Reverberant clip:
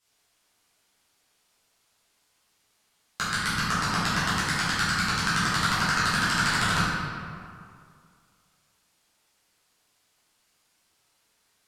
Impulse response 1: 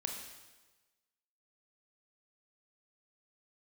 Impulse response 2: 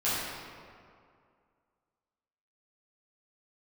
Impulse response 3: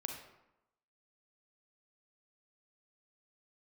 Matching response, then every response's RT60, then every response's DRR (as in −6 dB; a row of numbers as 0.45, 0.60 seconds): 2; 1.2, 2.3, 0.90 seconds; 2.0, −12.0, 2.5 decibels